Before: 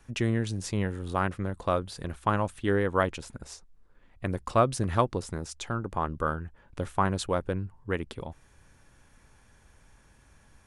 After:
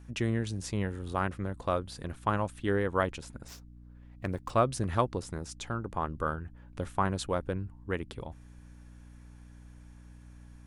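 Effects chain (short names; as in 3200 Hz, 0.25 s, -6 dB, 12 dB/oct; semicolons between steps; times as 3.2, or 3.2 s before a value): hum 60 Hz, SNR 17 dB; 3.48–4.5 running maximum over 3 samples; gain -3 dB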